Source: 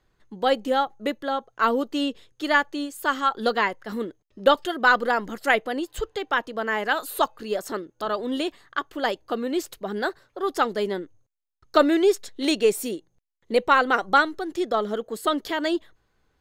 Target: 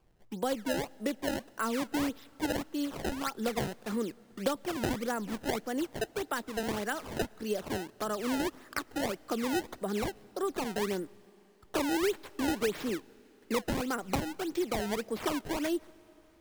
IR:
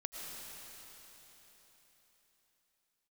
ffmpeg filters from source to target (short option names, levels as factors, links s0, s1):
-filter_complex "[0:a]acrossover=split=110|280[s0][s1][s2];[s0]acompressor=threshold=0.00158:ratio=4[s3];[s1]acompressor=threshold=0.0178:ratio=4[s4];[s2]acompressor=threshold=0.02:ratio=4[s5];[s3][s4][s5]amix=inputs=3:normalize=0,acrusher=samples=22:mix=1:aa=0.000001:lfo=1:lforange=35.2:lforate=1.7,asplit=2[s6][s7];[1:a]atrim=start_sample=2205[s8];[s7][s8]afir=irnorm=-1:irlink=0,volume=0.0841[s9];[s6][s9]amix=inputs=2:normalize=0"